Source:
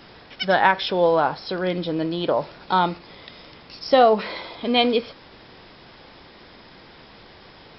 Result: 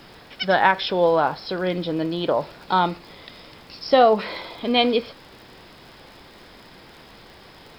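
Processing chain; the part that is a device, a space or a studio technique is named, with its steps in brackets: vinyl LP (crackle 56/s -39 dBFS; pink noise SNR 35 dB)

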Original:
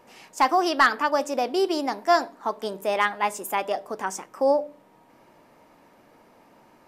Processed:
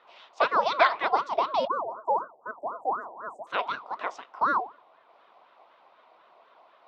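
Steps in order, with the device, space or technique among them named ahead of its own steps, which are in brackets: 1.67–3.47 Chebyshev band-stop 650–8000 Hz, order 4; voice changer toy (ring modulator with a swept carrier 500 Hz, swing 75%, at 4 Hz; speaker cabinet 580–4000 Hz, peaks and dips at 680 Hz +8 dB, 1000 Hz +6 dB, 1700 Hz -7 dB, 3700 Hz +6 dB)

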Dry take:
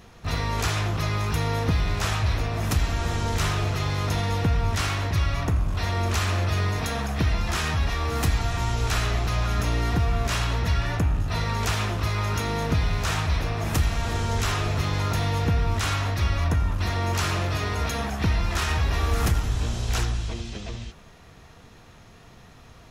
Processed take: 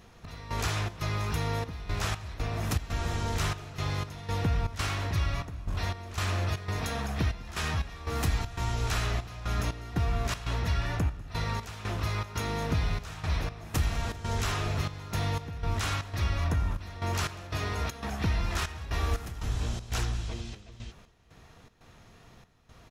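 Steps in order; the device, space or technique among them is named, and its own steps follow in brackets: trance gate with a delay (step gate "xx..xxx.xxxxx.." 119 bpm -12 dB; feedback echo 0.197 s, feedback 59%, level -22.5 dB); gain -5 dB

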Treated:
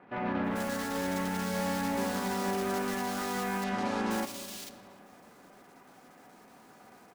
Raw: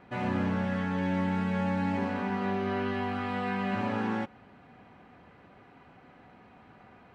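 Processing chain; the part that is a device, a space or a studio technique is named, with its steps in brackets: early digital voice recorder (BPF 210–3800 Hz; block floating point 3-bit); 3.2–3.67 LPF 5000 Hz 12 dB/oct; bands offset in time lows, highs 0.44 s, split 2800 Hz; digital reverb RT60 3 s, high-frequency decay 0.45×, pre-delay 15 ms, DRR 11.5 dB

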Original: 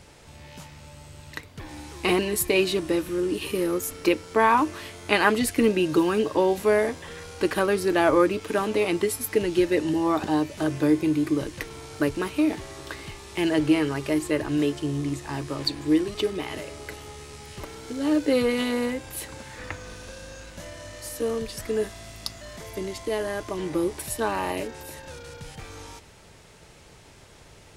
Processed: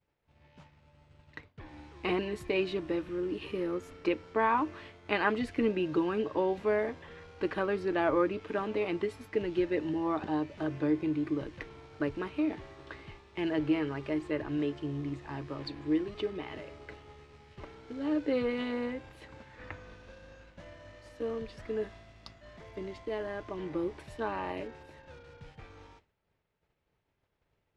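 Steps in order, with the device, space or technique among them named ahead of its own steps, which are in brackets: hearing-loss simulation (LPF 2900 Hz 12 dB/oct; expander -38 dBFS); gain -8 dB

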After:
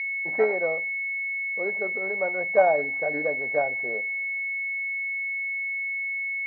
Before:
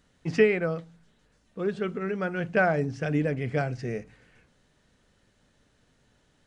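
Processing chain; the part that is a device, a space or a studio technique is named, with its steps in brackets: toy sound module (decimation joined by straight lines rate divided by 6×; pulse-width modulation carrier 2200 Hz; speaker cabinet 550–4000 Hz, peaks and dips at 580 Hz +8 dB, 820 Hz +7 dB, 1300 Hz -5 dB, 1900 Hz +8 dB, 3200 Hz -9 dB); gain +2.5 dB

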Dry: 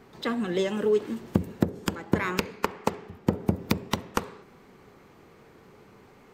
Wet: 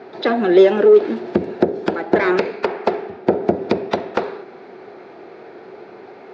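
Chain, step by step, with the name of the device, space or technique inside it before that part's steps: overdrive pedal into a guitar cabinet (overdrive pedal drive 21 dB, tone 2900 Hz, clips at -6 dBFS; speaker cabinet 110–4500 Hz, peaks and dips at 160 Hz -3 dB, 370 Hz +9 dB, 680 Hz +8 dB, 1100 Hz -9 dB, 2000 Hz -4 dB, 3000 Hz -8 dB); gain +2 dB

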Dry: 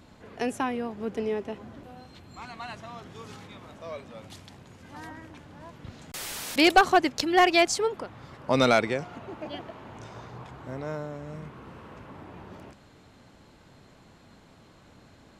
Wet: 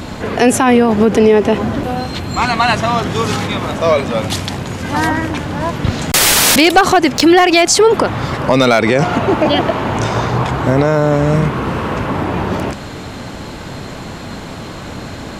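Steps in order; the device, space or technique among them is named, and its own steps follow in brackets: loud club master (compressor 2.5:1, threshold -26 dBFS, peak gain reduction 9 dB; hard clip -18.5 dBFS, distortion -25 dB; maximiser +28 dB); gain -1 dB

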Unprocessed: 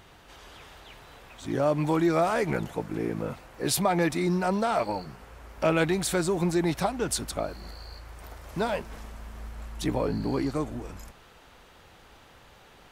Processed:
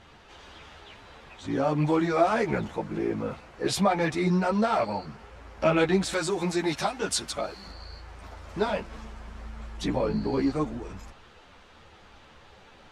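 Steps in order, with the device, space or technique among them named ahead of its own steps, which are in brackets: string-machine ensemble chorus (ensemble effect; LPF 6200 Hz 12 dB/oct); 6.13–7.68 tilt +2 dB/oct; gain +4 dB

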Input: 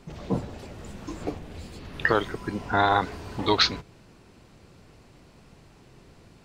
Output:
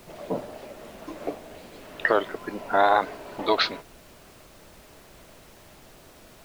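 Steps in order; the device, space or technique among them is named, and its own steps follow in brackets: horn gramophone (BPF 290–3600 Hz; bell 620 Hz +10 dB 0.3 oct; wow and flutter; pink noise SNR 22 dB)

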